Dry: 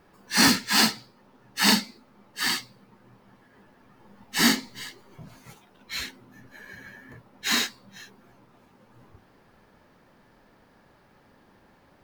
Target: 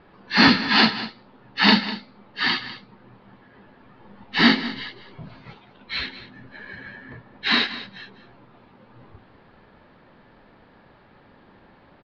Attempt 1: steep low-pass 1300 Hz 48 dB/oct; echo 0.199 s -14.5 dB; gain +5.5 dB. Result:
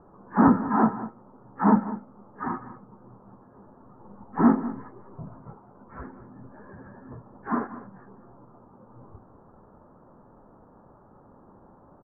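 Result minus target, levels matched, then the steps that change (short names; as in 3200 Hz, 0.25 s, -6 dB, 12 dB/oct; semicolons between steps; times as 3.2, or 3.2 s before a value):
1000 Hz band +4.0 dB
change: steep low-pass 4400 Hz 48 dB/oct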